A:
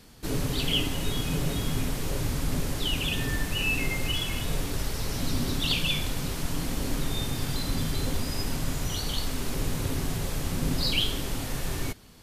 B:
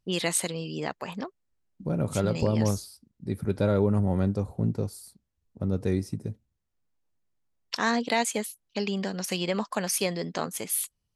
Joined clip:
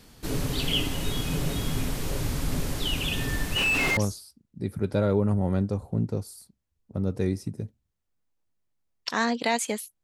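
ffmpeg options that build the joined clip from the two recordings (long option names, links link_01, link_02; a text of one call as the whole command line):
ffmpeg -i cue0.wav -i cue1.wav -filter_complex "[0:a]asettb=1/sr,asplit=3[link_01][link_02][link_03];[link_01]atrim=end=3.564[link_04];[link_02]atrim=start=3.56:end=3.97,asetpts=PTS-STARTPTS,afade=type=in:duration=0.004:curve=qsin,afade=type=out:start_time=0.406:duration=0.004:curve=qsin,asplit=2[link_05][link_06];[link_06]highpass=frequency=720:poles=1,volume=25dB,asoftclip=type=tanh:threshold=-15dB[link_07];[link_05][link_07]amix=inputs=2:normalize=0,lowpass=frequency=2400:poles=1,volume=-6dB[link_08];[link_03]atrim=start=3.966[link_09];[link_04][link_08]acrossfade=duration=0.004:curve1=hsin:curve2=qsin[link_10];[link_10][link_09]acrossfade=duration=0.004:curve1=qsin:curve2=hsin,apad=whole_dur=10.03,atrim=end=10.03,atrim=end=3.972[link_11];[1:a]atrim=start=2.628:end=8.69[link_12];[link_11][link_12]acrossfade=duration=0.004:curve1=hsin:curve2=hsin" out.wav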